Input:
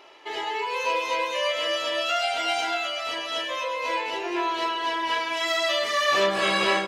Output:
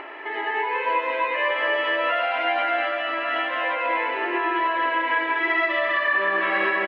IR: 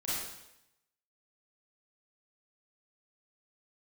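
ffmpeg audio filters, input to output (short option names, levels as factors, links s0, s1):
-filter_complex "[0:a]highpass=280,equalizer=f=290:t=q:w=4:g=8,equalizer=f=500:t=q:w=4:g=-3,equalizer=f=1800:t=q:w=4:g=9,lowpass=f=2400:w=0.5412,lowpass=f=2400:w=1.3066,asplit=2[s0][s1];[s1]aecho=0:1:93.29|198.3:0.562|0.708[s2];[s0][s2]amix=inputs=2:normalize=0,acompressor=mode=upward:threshold=0.0355:ratio=2.5,asplit=2[s3][s4];[s4]aecho=0:1:1124:0.355[s5];[s3][s5]amix=inputs=2:normalize=0,alimiter=limit=0.2:level=0:latency=1:release=258,volume=1.12"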